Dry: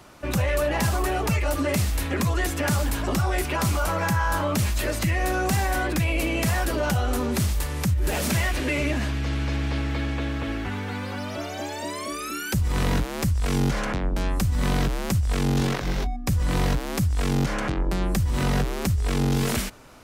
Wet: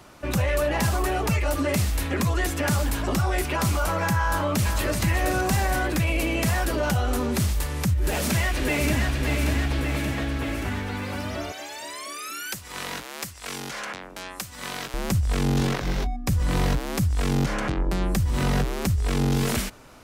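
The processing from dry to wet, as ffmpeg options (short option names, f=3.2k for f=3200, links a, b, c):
-filter_complex "[0:a]asplit=2[a][b];[b]afade=t=in:st=4.27:d=0.01,afade=t=out:st=5.02:d=0.01,aecho=0:1:380|760|1140|1520|1900|2280|2660|3040:0.446684|0.26801|0.160806|0.0964837|0.0578902|0.0347341|0.0208405|0.0125043[c];[a][c]amix=inputs=2:normalize=0,asplit=2[d][e];[e]afade=t=in:st=8.03:d=0.01,afade=t=out:st=9.07:d=0.01,aecho=0:1:580|1160|1740|2320|2900|3480|4060|4640|5220|5800:0.595662|0.38718|0.251667|0.163584|0.106329|0.0691141|0.0449242|0.0292007|0.0189805|0.0123373[f];[d][f]amix=inputs=2:normalize=0,asettb=1/sr,asplit=3[g][h][i];[g]atrim=end=11.524[j];[h]atrim=start=11.52:end=14.94,asetpts=PTS-STARTPTS,afade=t=in:d=0.004:c=qsin,afade=t=out:st=3.416:d=0.004:c=qsin,highpass=f=1.3k:p=1[k];[i]atrim=start=14.936[l];[j][k]acrossfade=d=0.004:c1=hsin:c2=qsin[m];[m][l]acrossfade=d=0.004:c1=qsin:c2=hsin"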